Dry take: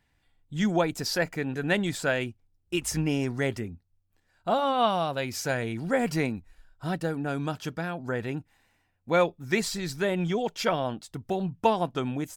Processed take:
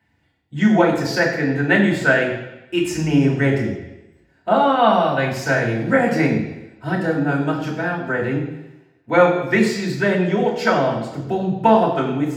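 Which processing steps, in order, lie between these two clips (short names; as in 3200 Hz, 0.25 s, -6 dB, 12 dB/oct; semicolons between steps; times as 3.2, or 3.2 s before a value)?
dynamic EQ 1400 Hz, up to +6 dB, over -41 dBFS, Q 1.5; reverb RT60 0.95 s, pre-delay 3 ms, DRR -3.5 dB; gain -5 dB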